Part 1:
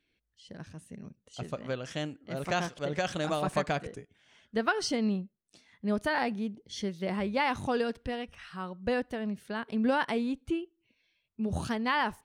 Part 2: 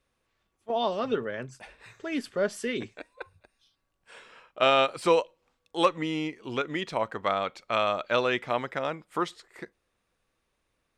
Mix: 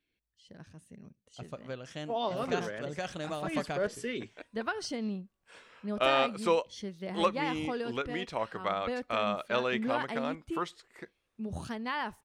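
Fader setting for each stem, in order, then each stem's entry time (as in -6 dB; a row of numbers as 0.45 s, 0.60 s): -6.0 dB, -5.0 dB; 0.00 s, 1.40 s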